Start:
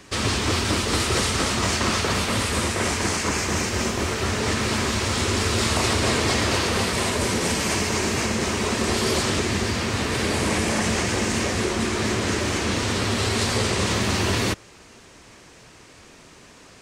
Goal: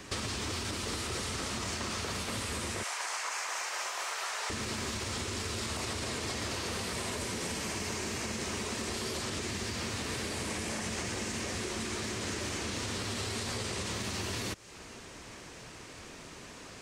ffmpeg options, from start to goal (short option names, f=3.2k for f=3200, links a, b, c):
-filter_complex "[0:a]asettb=1/sr,asplit=3[a][b][c];[a]atrim=end=2.834[d];[b]atrim=start=2.83:end=4.5,asetpts=PTS-STARTPTS,afade=t=in:d=0.004:c=qsin,afade=t=out:st=1.666:d=0.004:c=qsin,highpass=f=710:w=0.5412,highpass=f=710:w=1.3066[e];[c]atrim=start=4.496[f];[d][e]acrossfade=d=0.004:c1=hsin:c2=qsin[g];[g][f]acrossfade=d=0.004:c1=qsin:c2=hsin,alimiter=limit=-15.5dB:level=0:latency=1:release=80,acrossover=split=1800|4500[h][i][j];[h]acompressor=threshold=-38dB:ratio=4[k];[i]acompressor=threshold=-45dB:ratio=4[l];[j]acompressor=threshold=-42dB:ratio=4[m];[k][l][m]amix=inputs=3:normalize=0"